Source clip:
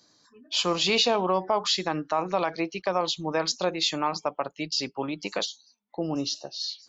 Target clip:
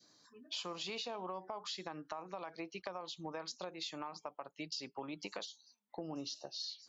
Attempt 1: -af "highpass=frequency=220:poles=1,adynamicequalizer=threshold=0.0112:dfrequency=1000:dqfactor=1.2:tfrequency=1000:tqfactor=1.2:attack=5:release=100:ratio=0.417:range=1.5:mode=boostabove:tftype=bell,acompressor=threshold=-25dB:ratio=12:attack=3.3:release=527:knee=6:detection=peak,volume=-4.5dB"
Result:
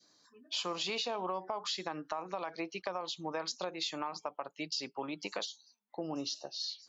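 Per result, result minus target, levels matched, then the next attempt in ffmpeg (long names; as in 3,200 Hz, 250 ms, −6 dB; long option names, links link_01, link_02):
downward compressor: peak gain reduction −6.5 dB; 125 Hz band −3.0 dB
-af "highpass=frequency=220:poles=1,adynamicequalizer=threshold=0.0112:dfrequency=1000:dqfactor=1.2:tfrequency=1000:tqfactor=1.2:attack=5:release=100:ratio=0.417:range=1.5:mode=boostabove:tftype=bell,acompressor=threshold=-32dB:ratio=12:attack=3.3:release=527:knee=6:detection=peak,volume=-4.5dB"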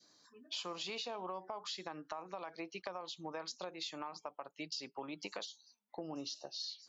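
125 Hz band −3.0 dB
-af "highpass=frequency=86:poles=1,adynamicequalizer=threshold=0.0112:dfrequency=1000:dqfactor=1.2:tfrequency=1000:tqfactor=1.2:attack=5:release=100:ratio=0.417:range=1.5:mode=boostabove:tftype=bell,acompressor=threshold=-32dB:ratio=12:attack=3.3:release=527:knee=6:detection=peak,volume=-4.5dB"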